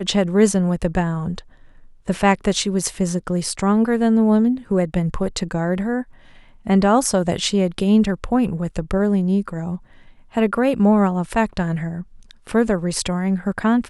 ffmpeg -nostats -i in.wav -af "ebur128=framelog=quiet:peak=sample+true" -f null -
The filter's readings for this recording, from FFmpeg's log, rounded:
Integrated loudness:
  I:         -19.7 LUFS
  Threshold: -30.2 LUFS
Loudness range:
  LRA:         2.0 LU
  Threshold: -40.1 LUFS
  LRA low:   -21.0 LUFS
  LRA high:  -19.0 LUFS
Sample peak:
  Peak:       -2.2 dBFS
True peak:
  Peak:       -2.1 dBFS